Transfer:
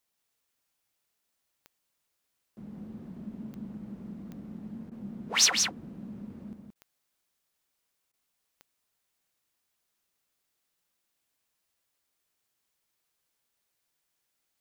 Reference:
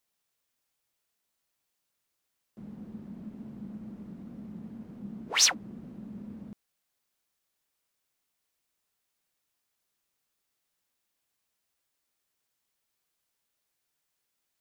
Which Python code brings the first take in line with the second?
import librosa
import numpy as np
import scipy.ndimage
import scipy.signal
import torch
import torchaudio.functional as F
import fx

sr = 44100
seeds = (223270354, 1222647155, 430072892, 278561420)

y = fx.fix_declip(x, sr, threshold_db=-10.5)
y = fx.fix_declick_ar(y, sr, threshold=10.0)
y = fx.fix_interpolate(y, sr, at_s=(4.9, 6.74, 8.12), length_ms=14.0)
y = fx.fix_echo_inverse(y, sr, delay_ms=174, level_db=-5.0)